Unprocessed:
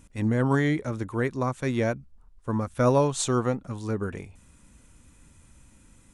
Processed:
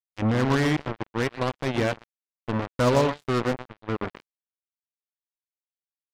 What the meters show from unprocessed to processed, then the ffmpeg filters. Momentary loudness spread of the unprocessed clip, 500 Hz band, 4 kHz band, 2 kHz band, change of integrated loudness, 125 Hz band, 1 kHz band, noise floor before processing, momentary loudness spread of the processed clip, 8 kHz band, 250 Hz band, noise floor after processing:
9 LU, +0.5 dB, +5.0 dB, +3.0 dB, +0.5 dB, -0.5 dB, +2.0 dB, -57 dBFS, 11 LU, -7.0 dB, 0.0 dB, under -85 dBFS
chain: -af "aresample=8000,aresample=44100,aecho=1:1:122:0.316,acrusher=bits=3:mix=0:aa=0.5"

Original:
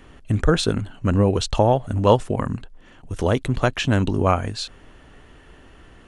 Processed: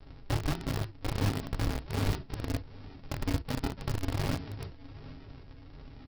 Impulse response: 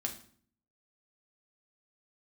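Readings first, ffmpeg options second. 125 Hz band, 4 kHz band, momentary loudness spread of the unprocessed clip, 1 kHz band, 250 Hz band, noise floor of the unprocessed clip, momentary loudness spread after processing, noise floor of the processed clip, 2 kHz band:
-10.5 dB, -12.0 dB, 11 LU, -16.5 dB, -13.0 dB, -49 dBFS, 17 LU, -51 dBFS, -11.5 dB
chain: -filter_complex "[0:a]aresample=11025,acrusher=samples=39:mix=1:aa=0.000001:lfo=1:lforange=39:lforate=1.3,aresample=44100,acompressor=threshold=-36dB:ratio=3,highshelf=f=4k:g=3.5,aecho=1:1:772|1544|2316:0.188|0.0584|0.0181[a];[1:a]atrim=start_sample=2205,atrim=end_sample=3969,asetrate=52920,aresample=44100[b];[a][b]afir=irnorm=-1:irlink=0,asplit=2[c][d];[d]acrusher=bits=4:mix=0:aa=0.000001,volume=-3.5dB[e];[c][e]amix=inputs=2:normalize=0,volume=-1.5dB"

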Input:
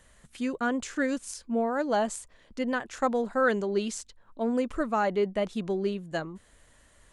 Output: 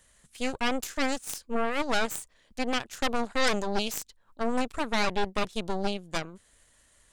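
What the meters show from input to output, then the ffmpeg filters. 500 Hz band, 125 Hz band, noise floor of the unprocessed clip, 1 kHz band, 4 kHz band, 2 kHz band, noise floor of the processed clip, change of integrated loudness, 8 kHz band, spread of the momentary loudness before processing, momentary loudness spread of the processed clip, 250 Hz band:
-3.5 dB, -1.0 dB, -60 dBFS, 0.0 dB, +10.0 dB, +1.5 dB, -64 dBFS, -1.0 dB, +3.0 dB, 10 LU, 8 LU, -3.0 dB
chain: -af "aeval=exprs='0.224*(cos(1*acos(clip(val(0)/0.224,-1,1)))-cos(1*PI/2))+0.0794*(cos(4*acos(clip(val(0)/0.224,-1,1)))-cos(4*PI/2))+0.0501*(cos(8*acos(clip(val(0)/0.224,-1,1)))-cos(8*PI/2))':c=same,highshelf=f=2.7k:g=9.5,volume=-7dB"

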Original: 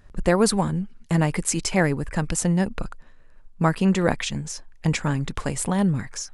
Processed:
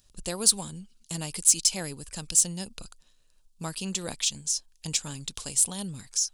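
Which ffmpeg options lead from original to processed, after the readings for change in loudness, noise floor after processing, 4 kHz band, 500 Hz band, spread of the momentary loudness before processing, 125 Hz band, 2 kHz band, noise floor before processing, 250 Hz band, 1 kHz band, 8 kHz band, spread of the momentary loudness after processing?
-2.5 dB, -62 dBFS, +3.5 dB, -15.5 dB, 8 LU, -15.5 dB, -13.5 dB, -49 dBFS, -15.5 dB, -15.5 dB, +6.5 dB, 16 LU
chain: -af "aexciter=amount=7.5:drive=7.9:freq=2.9k,volume=-15.5dB"

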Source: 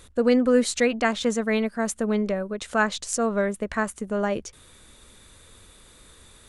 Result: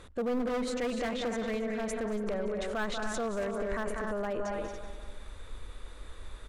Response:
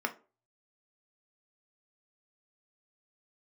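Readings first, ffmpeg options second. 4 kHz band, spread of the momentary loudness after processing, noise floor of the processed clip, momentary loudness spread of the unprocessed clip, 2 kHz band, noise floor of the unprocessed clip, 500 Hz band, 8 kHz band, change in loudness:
-8.5 dB, 17 LU, -48 dBFS, 8 LU, -10.0 dB, -53 dBFS, -8.0 dB, -13.5 dB, -9.5 dB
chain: -filter_complex "[0:a]lowshelf=f=230:g=5,asplit=2[a][b];[b]aecho=0:1:190|380|570|760:0.2|0.0938|0.0441|0.0207[c];[a][c]amix=inputs=2:normalize=0,asplit=2[d][e];[e]highpass=f=720:p=1,volume=11dB,asoftclip=type=tanh:threshold=-8.5dB[f];[d][f]amix=inputs=2:normalize=0,lowpass=f=1k:p=1,volume=-6dB,asoftclip=type=hard:threshold=-16dB,asplit=2[g][h];[h]aecho=0:1:227.4|282.8:0.316|0.282[i];[g][i]amix=inputs=2:normalize=0,aeval=exprs='0.15*(abs(mod(val(0)/0.15+3,4)-2)-1)':c=same,alimiter=level_in=2.5dB:limit=-24dB:level=0:latency=1:release=16,volume=-2.5dB,asubboost=boost=8:cutoff=50"

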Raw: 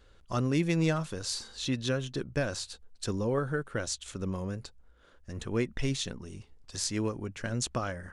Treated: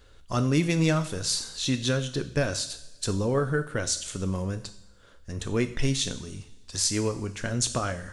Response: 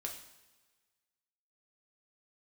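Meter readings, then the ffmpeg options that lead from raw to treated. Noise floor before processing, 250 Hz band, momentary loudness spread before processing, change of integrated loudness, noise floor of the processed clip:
-59 dBFS, +4.0 dB, 14 LU, +5.0 dB, -53 dBFS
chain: -filter_complex "[0:a]asplit=2[a][b];[1:a]atrim=start_sample=2205,lowshelf=f=170:g=5,highshelf=f=3.2k:g=11.5[c];[b][c]afir=irnorm=-1:irlink=0,volume=-3.5dB[d];[a][d]amix=inputs=2:normalize=0"

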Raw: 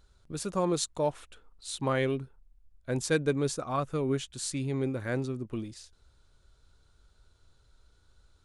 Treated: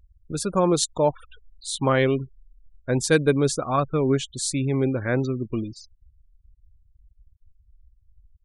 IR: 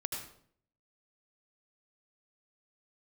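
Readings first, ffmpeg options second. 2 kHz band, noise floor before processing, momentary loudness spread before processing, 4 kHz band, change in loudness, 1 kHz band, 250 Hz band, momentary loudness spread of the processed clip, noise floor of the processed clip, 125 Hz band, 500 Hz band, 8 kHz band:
+8.0 dB, -65 dBFS, 15 LU, +7.5 dB, +8.0 dB, +8.0 dB, +8.0 dB, 12 LU, -61 dBFS, +8.0 dB, +8.0 dB, +8.0 dB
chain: -af "afftfilt=real='re*gte(hypot(re,im),0.00631)':imag='im*gte(hypot(re,im),0.00631)':win_size=1024:overlap=0.75,volume=8dB"

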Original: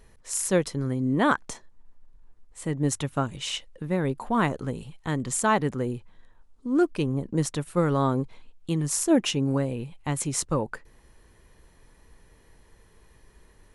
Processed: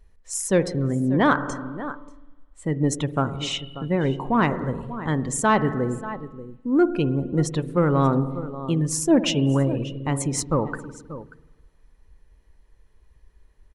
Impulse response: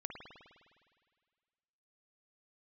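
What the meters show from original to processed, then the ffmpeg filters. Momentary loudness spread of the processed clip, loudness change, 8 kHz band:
14 LU, +3.5 dB, +0.5 dB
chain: -filter_complex "[0:a]aecho=1:1:586:0.2,asplit=2[a][b];[1:a]atrim=start_sample=2205,lowpass=8.1k[c];[b][c]afir=irnorm=-1:irlink=0,volume=-2dB[d];[a][d]amix=inputs=2:normalize=0,afftdn=nr=14:nf=-37,acontrast=35,volume=-5dB"

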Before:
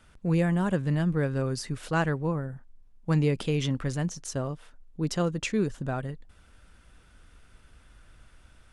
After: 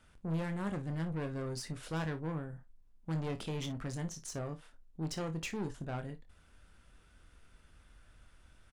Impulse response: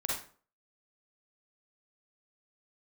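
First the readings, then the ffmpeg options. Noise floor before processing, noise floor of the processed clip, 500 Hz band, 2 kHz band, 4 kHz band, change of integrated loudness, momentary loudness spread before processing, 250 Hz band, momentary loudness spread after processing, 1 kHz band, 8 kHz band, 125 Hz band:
-57 dBFS, -63 dBFS, -11.0 dB, -10.5 dB, -7.5 dB, -10.5 dB, 14 LU, -10.5 dB, 10 LU, -9.5 dB, -7.0 dB, -10.5 dB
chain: -filter_complex "[0:a]aeval=exprs='(tanh(25.1*val(0)+0.3)-tanh(0.3))/25.1':c=same,asplit=2[a][b];[b]aecho=0:1:25|56:0.355|0.168[c];[a][c]amix=inputs=2:normalize=0,volume=-5.5dB"

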